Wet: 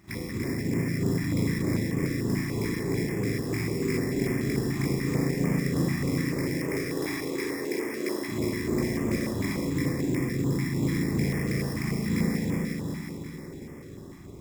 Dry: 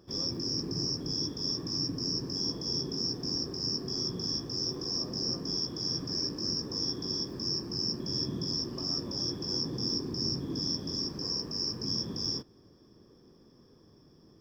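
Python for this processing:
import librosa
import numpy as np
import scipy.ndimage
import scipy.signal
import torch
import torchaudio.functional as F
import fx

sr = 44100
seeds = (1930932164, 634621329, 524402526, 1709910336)

y = fx.highpass(x, sr, hz=320.0, slope=24, at=(6.15, 8.28))
y = fx.over_compress(y, sr, threshold_db=-38.0, ratio=-1.0)
y = fx.echo_feedback(y, sr, ms=361, feedback_pct=57, wet_db=-4)
y = fx.rev_spring(y, sr, rt60_s=1.7, pass_ms=(36, 46), chirp_ms=65, drr_db=-9.5)
y = np.repeat(y[::6], 6)[:len(y)]
y = fx.filter_held_notch(y, sr, hz=6.8, low_hz=490.0, high_hz=4100.0)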